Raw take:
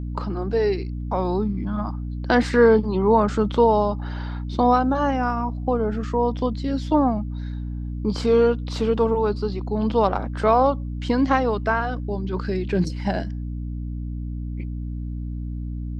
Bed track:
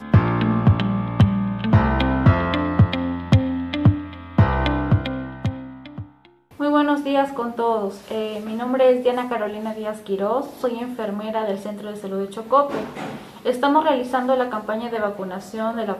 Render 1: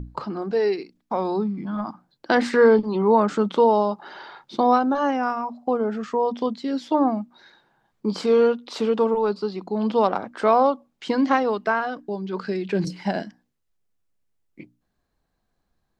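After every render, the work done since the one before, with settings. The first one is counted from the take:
mains-hum notches 60/120/180/240/300 Hz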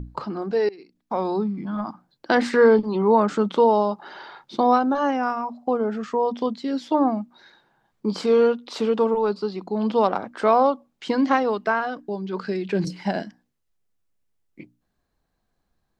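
0:00.69–0:01.18: fade in, from −23.5 dB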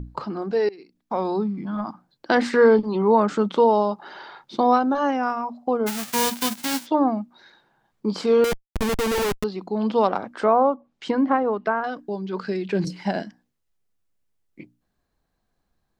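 0:05.86–0:06.85: spectral envelope flattened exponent 0.1
0:08.44–0:09.44: comparator with hysteresis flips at −23.5 dBFS
0:10.30–0:11.84: treble cut that deepens with the level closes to 1,400 Hz, closed at −18 dBFS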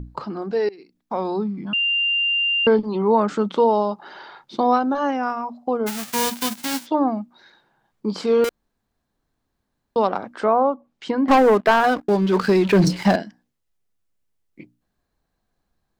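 0:01.73–0:02.67: beep over 2,790 Hz −17.5 dBFS
0:08.49–0:09.96: fill with room tone
0:11.28–0:13.16: leveller curve on the samples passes 3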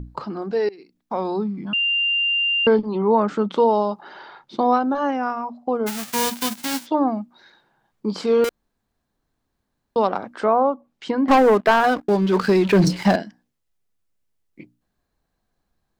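0:02.81–0:03.51: high-shelf EQ 5,000 Hz −10 dB
0:04.01–0:05.74: high-shelf EQ 4,200 Hz −5.5 dB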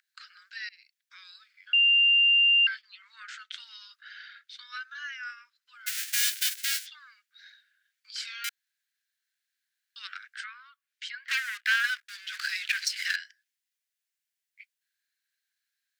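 Butterworth high-pass 1,500 Hz 72 dB per octave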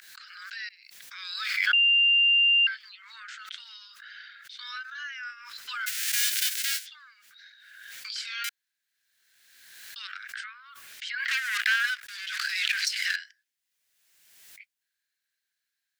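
background raised ahead of every attack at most 37 dB per second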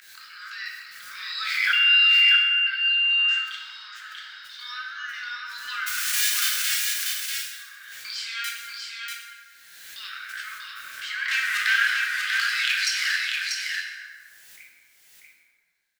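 single-tap delay 640 ms −4 dB
dense smooth reverb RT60 1.8 s, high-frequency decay 0.55×, DRR −2 dB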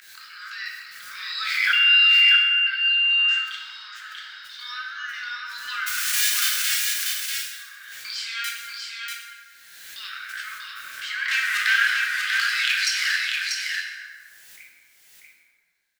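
level +1.5 dB

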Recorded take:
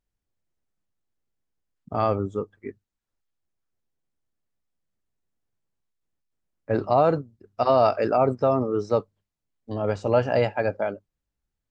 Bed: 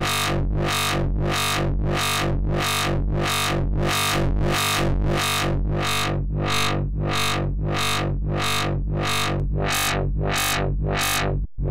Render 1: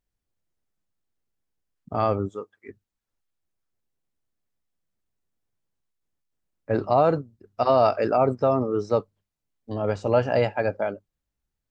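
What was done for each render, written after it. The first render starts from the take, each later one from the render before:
0:02.28–0:02.68: high-pass filter 540 Hz → 1,400 Hz 6 dB per octave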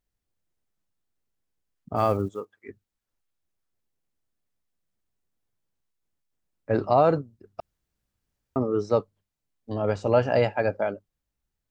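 0:01.96–0:02.55: one scale factor per block 7 bits
0:07.60–0:08.56: fill with room tone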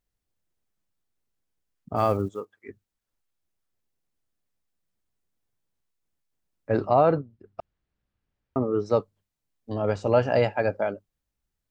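0:06.87–0:08.86: low-pass filter 3,300 Hz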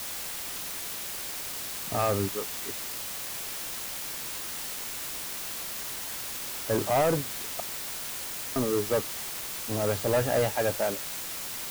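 soft clipping −19 dBFS, distortion −11 dB
bit-depth reduction 6 bits, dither triangular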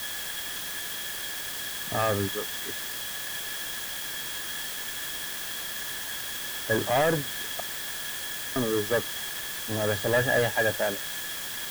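hollow resonant body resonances 1,700/3,300 Hz, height 17 dB, ringing for 35 ms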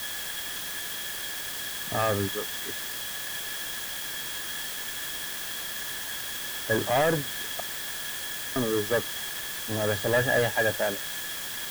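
no processing that can be heard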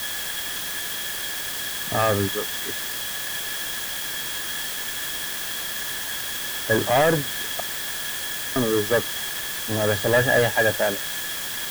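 level +5 dB

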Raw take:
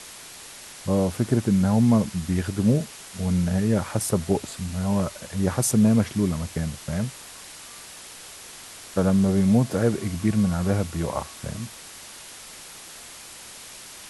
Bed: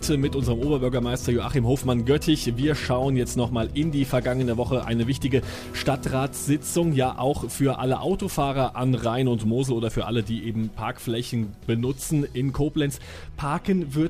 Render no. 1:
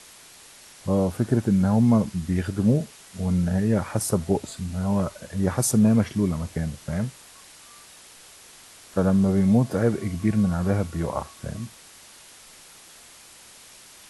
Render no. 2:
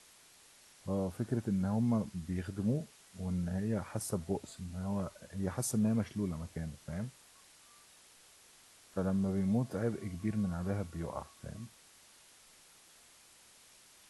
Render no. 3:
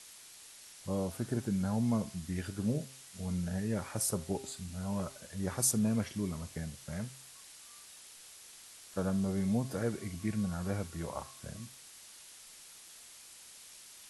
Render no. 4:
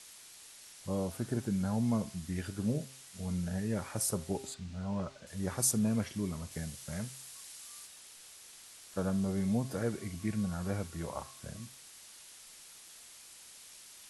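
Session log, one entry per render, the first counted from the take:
noise reduction from a noise print 6 dB
level −12.5 dB
high-shelf EQ 2,200 Hz +9 dB; hum removal 133.2 Hz, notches 28
0:04.54–0:05.27: high-frequency loss of the air 110 metres; 0:06.51–0:07.87: high-shelf EQ 4,000 Hz +5.5 dB

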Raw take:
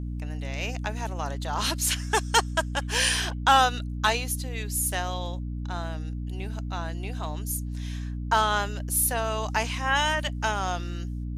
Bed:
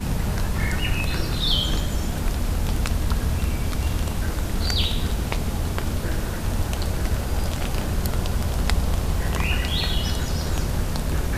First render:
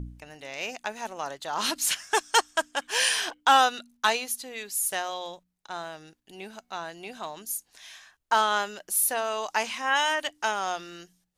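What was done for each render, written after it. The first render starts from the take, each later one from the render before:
hum removal 60 Hz, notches 5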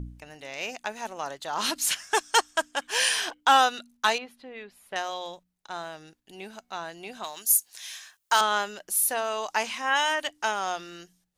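0:04.18–0:04.96: high-frequency loss of the air 450 metres
0:07.24–0:08.41: spectral tilt +3.5 dB per octave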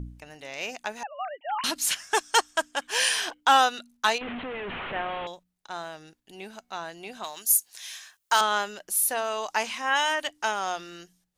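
0:01.03–0:01.64: three sine waves on the formant tracks
0:04.21–0:05.27: linear delta modulator 16 kbit/s, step −28 dBFS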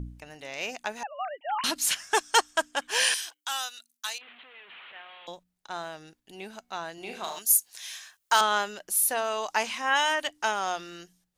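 0:03.14–0:05.28: first difference
0:06.94–0:07.39: flutter between parallel walls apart 6.5 metres, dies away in 0.48 s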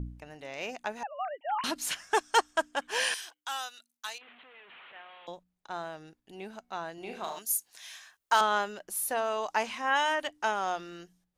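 high-shelf EQ 2,200 Hz −9 dB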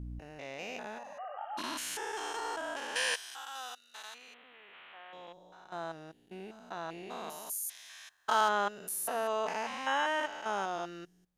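spectrum averaged block by block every 200 ms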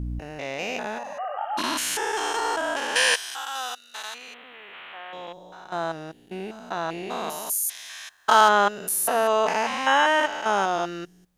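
level +11.5 dB

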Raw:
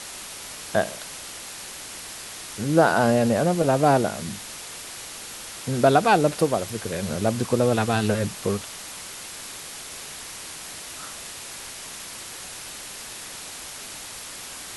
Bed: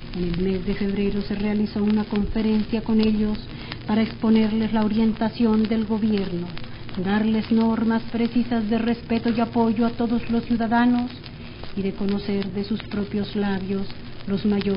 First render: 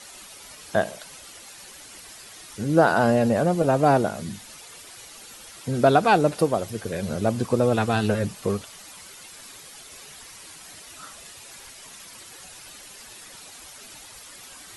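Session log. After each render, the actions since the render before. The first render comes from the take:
broadband denoise 10 dB, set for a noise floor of −38 dBFS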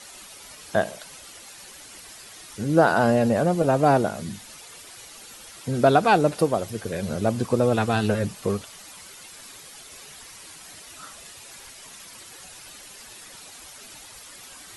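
no processing that can be heard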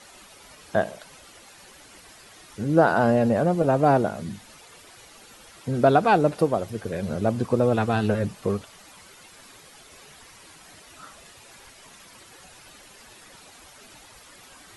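high-shelf EQ 3,100 Hz −8.5 dB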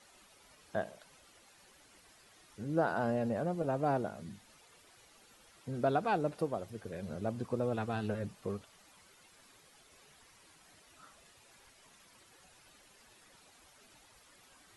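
level −13 dB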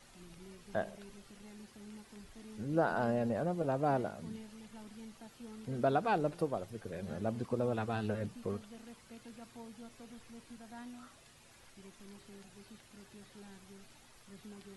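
mix in bed −30.5 dB

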